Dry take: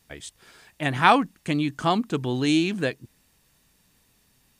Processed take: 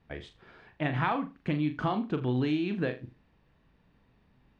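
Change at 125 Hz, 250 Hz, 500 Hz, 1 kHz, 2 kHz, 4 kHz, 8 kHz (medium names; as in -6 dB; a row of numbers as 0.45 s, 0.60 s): -2.0 dB, -5.5 dB, -6.5 dB, -11.0 dB, -9.5 dB, -13.5 dB, under -25 dB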